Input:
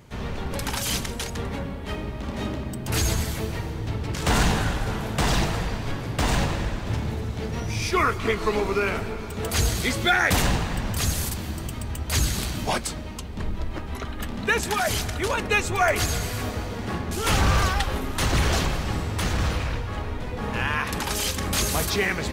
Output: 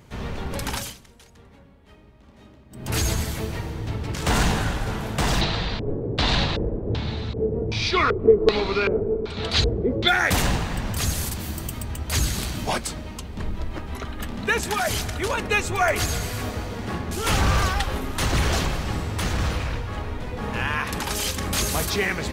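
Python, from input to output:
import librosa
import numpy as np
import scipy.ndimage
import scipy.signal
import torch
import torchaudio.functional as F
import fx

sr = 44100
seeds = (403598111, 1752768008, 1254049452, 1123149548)

y = fx.filter_lfo_lowpass(x, sr, shape='square', hz=1.3, low_hz=440.0, high_hz=4000.0, q=4.0, at=(5.41, 10.08))
y = fx.high_shelf(y, sr, hz=fx.line((11.39, 7600.0), (11.84, 12000.0)), db=11.5, at=(11.39, 11.84), fade=0.02)
y = fx.edit(y, sr, fx.fade_down_up(start_s=0.76, length_s=2.12, db=-20.0, fade_s=0.18), tone=tone)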